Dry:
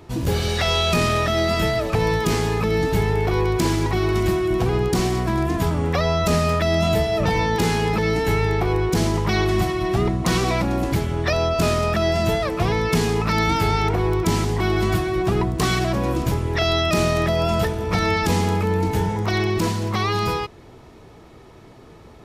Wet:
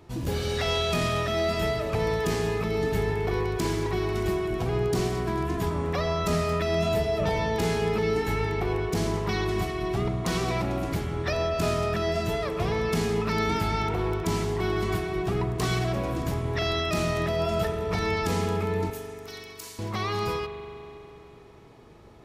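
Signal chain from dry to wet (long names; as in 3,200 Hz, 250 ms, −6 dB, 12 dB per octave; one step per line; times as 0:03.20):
0:18.90–0:19.79: first difference
spring reverb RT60 3.2 s, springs 41 ms, chirp 55 ms, DRR 7 dB
level −7.5 dB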